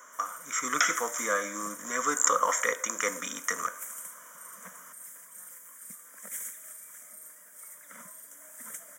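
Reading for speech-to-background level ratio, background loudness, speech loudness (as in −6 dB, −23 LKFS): 15.0 dB, −43.5 LKFS, −28.5 LKFS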